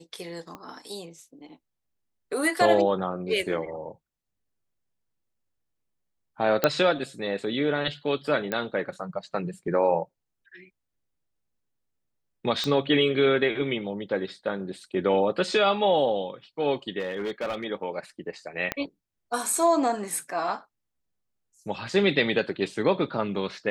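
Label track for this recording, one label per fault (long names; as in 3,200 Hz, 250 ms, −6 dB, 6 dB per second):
0.550000	0.550000	click −25 dBFS
6.640000	6.640000	click −6 dBFS
8.520000	8.520000	click −14 dBFS
12.640000	12.640000	click −14 dBFS
16.990000	17.650000	clipping −25.5 dBFS
18.720000	18.720000	click −11 dBFS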